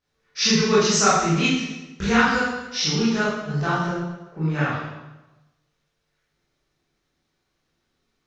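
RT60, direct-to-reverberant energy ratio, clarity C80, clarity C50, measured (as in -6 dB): 1.1 s, -10.5 dB, 2.5 dB, -1.5 dB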